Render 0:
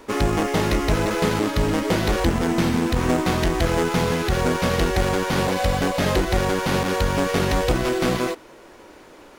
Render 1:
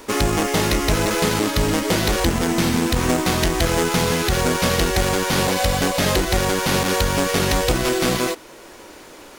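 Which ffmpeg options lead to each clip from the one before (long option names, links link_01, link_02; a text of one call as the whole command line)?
ffmpeg -i in.wav -filter_complex "[0:a]asplit=2[link_01][link_02];[link_02]alimiter=limit=-16.5dB:level=0:latency=1:release=448,volume=-1dB[link_03];[link_01][link_03]amix=inputs=2:normalize=0,highshelf=frequency=3400:gain=9.5,volume=-2.5dB" out.wav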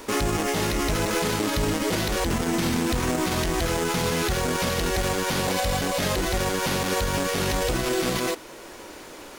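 ffmpeg -i in.wav -af "alimiter=limit=-15.5dB:level=0:latency=1:release=32" out.wav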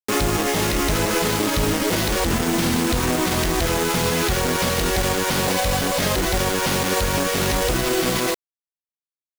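ffmpeg -i in.wav -af "acrusher=bits=4:mix=0:aa=0.000001,volume=3.5dB" out.wav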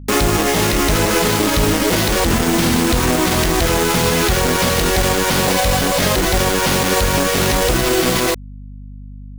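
ffmpeg -i in.wav -af "aeval=exprs='val(0)+0.0141*(sin(2*PI*50*n/s)+sin(2*PI*2*50*n/s)/2+sin(2*PI*3*50*n/s)/3+sin(2*PI*4*50*n/s)/4+sin(2*PI*5*50*n/s)/5)':channel_layout=same,volume=5dB" out.wav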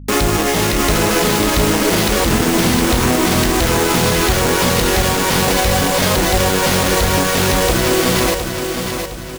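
ffmpeg -i in.wav -af "aecho=1:1:713|1426|2139|2852|3565:0.473|0.189|0.0757|0.0303|0.0121" out.wav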